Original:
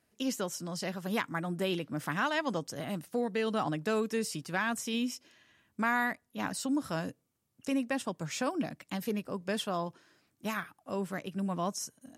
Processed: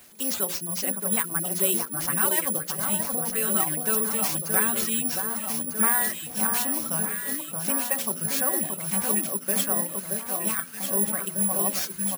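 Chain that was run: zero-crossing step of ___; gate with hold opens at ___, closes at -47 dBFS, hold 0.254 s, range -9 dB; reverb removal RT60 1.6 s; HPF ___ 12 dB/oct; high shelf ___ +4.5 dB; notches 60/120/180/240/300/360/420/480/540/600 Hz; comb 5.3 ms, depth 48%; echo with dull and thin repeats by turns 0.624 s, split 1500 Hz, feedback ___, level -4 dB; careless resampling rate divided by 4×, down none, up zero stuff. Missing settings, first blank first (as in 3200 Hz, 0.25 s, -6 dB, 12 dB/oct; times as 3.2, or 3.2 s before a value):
-43.5 dBFS, -43 dBFS, 110 Hz, 12000 Hz, 78%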